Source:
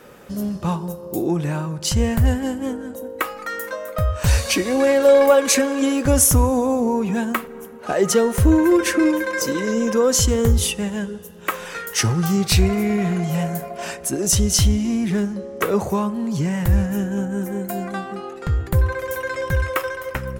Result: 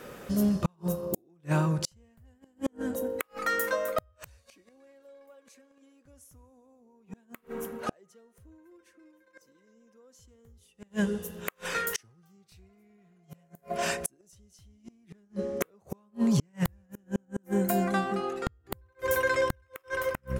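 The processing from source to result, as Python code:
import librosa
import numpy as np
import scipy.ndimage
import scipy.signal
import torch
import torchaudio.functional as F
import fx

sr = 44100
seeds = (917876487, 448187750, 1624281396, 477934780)

y = fx.notch(x, sr, hz=870.0, q=15.0)
y = fx.gate_flip(y, sr, shuts_db=-15.0, range_db=-41)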